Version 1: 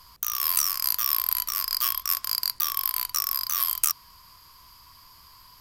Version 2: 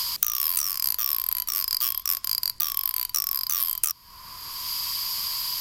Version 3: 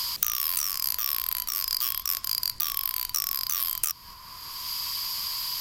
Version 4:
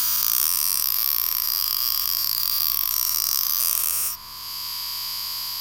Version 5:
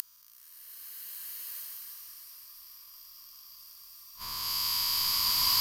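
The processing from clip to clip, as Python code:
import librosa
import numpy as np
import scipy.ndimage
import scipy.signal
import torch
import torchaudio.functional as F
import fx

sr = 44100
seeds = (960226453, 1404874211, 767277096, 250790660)

y1 = fx.dynamic_eq(x, sr, hz=1100.0, q=0.7, threshold_db=-47.0, ratio=4.0, max_db=-6)
y1 = fx.band_squash(y1, sr, depth_pct=100)
y2 = fx.peak_eq(y1, sr, hz=11000.0, db=-3.0, octaves=1.1)
y2 = fx.transient(y2, sr, attack_db=1, sustain_db=7)
y2 = y2 * librosa.db_to_amplitude(-1.5)
y3 = fx.spec_dilate(y2, sr, span_ms=480)
y3 = y3 * librosa.db_to_amplitude(-4.0)
y4 = fx.gate_flip(y3, sr, shuts_db=-14.0, range_db=-37)
y4 = fx.rev_bloom(y4, sr, seeds[0], attack_ms=1580, drr_db=-8.5)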